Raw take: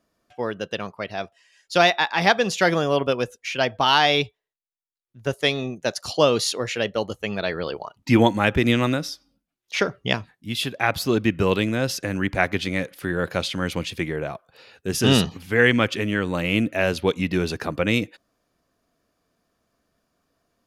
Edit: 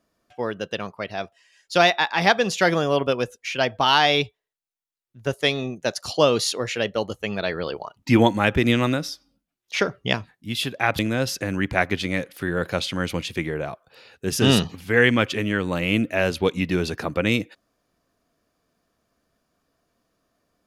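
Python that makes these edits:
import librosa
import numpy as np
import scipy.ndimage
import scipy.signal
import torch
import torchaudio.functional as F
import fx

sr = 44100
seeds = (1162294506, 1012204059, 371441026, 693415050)

y = fx.edit(x, sr, fx.cut(start_s=10.99, length_s=0.62), tone=tone)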